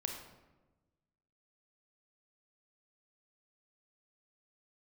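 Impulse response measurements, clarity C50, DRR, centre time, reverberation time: 4.5 dB, 2.5 dB, 35 ms, 1.2 s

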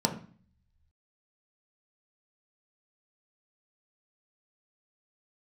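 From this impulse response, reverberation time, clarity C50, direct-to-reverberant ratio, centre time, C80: 0.45 s, 10.5 dB, 2.0 dB, 14 ms, 14.5 dB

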